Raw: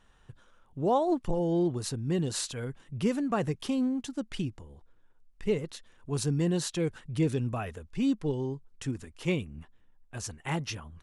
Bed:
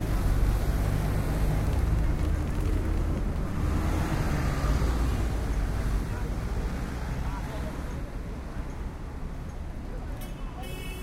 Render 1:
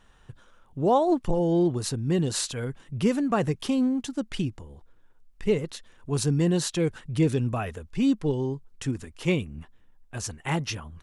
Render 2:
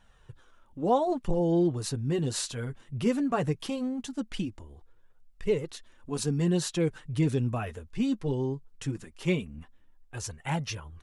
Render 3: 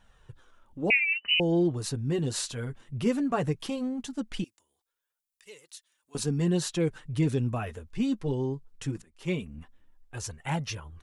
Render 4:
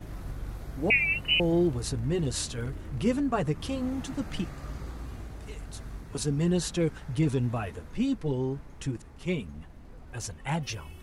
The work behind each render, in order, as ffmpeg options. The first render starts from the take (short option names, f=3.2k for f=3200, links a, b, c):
-af "volume=4.5dB"
-af "flanger=delay=1.2:depth=8.1:regen=-27:speed=0.19:shape=triangular"
-filter_complex "[0:a]asettb=1/sr,asplit=3[a][b][c];[a]atrim=end=0.904[d];[b]atrim=start=0.9:end=1.4,asetpts=PTS-STARTPTS,afade=t=in:d=0.004:c=qsin,afade=t=out:st=0.496:d=0.004:c=qsin,lowpass=f=2.6k:t=q:w=0.5098,lowpass=f=2.6k:t=q:w=0.6013,lowpass=f=2.6k:t=q:w=0.9,lowpass=f=2.6k:t=q:w=2.563,afreqshift=-3000[e];[c]atrim=start=1.396[f];[d][e]acrossfade=d=0.004:c1=hsin:c2=qsin[g];[g][f]acrossfade=d=0.004:c1=qsin:c2=hsin,asettb=1/sr,asplit=3[h][i][j];[h]atrim=end=4.444[k];[i]atrim=start=4.44:end=6.15,asetpts=PTS-STARTPTS,afade=t=in:d=0.004:c=qsin,afade=t=out:st=1.706:d=0.004:c=qsin,aderivative[l];[j]atrim=start=6.146[m];[k][l]acrossfade=d=0.004:c1=hsin:c2=qsin[n];[n][m]acrossfade=d=0.004:c1=qsin:c2=hsin,asplit=2[o][p];[o]atrim=end=9.02,asetpts=PTS-STARTPTS,afade=t=out:st=9.016:d=0.004:c=hsin:silence=0.11885[q];[p]atrim=start=9.02,asetpts=PTS-STARTPTS,afade=t=in:d=0.45:silence=0.11885[r];[q][r]concat=n=2:v=0:a=1"
-filter_complex "[1:a]volume=-12.5dB[a];[0:a][a]amix=inputs=2:normalize=0"